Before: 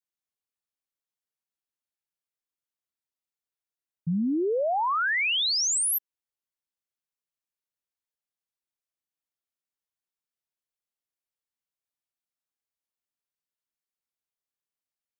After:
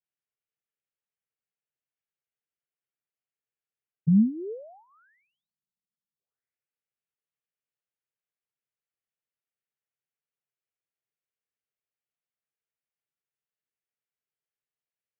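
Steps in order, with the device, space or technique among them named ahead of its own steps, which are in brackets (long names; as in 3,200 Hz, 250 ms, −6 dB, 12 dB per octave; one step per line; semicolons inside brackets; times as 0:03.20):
envelope filter bass rig (envelope-controlled low-pass 210–3,100 Hz down, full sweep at −34 dBFS; loudspeaker in its box 88–2,100 Hz, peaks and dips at 130 Hz +9 dB, 290 Hz −9 dB, 440 Hz +6 dB, 1,000 Hz −10 dB)
level −2.5 dB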